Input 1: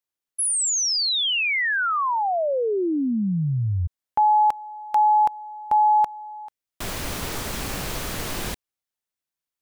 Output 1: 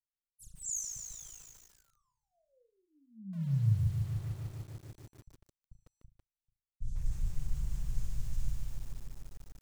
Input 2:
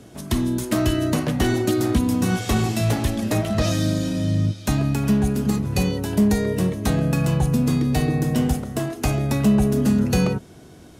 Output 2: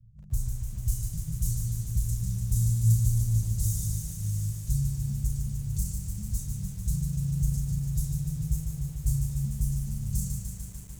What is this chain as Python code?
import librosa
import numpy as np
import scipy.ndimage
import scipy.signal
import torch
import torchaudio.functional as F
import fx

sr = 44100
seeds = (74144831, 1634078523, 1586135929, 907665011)

y = scipy.signal.medfilt(x, 9)
y = scipy.signal.sosfilt(scipy.signal.ellip(3, 1.0, 50, [100.0, 6700.0], 'bandstop', fs=sr, output='sos'), y)
y = fx.env_lowpass(y, sr, base_hz=700.0, full_db=-22.0)
y = fx.high_shelf(y, sr, hz=5800.0, db=11.5)
y = y + 0.73 * np.pad(y, (int(5.9 * sr / 1000.0), 0))[:len(y)]
y = fx.room_flutter(y, sr, wall_m=6.2, rt60_s=0.28)
y = fx.echo_crushed(y, sr, ms=148, feedback_pct=80, bits=9, wet_db=-5.5)